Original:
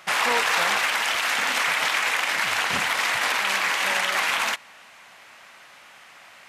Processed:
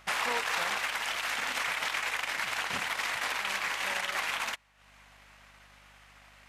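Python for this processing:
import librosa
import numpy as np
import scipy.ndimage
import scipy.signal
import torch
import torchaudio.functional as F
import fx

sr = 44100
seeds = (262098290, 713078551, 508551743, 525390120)

y = fx.add_hum(x, sr, base_hz=50, snr_db=29)
y = fx.transient(y, sr, attack_db=3, sustain_db=-10)
y = y * librosa.db_to_amplitude(-9.0)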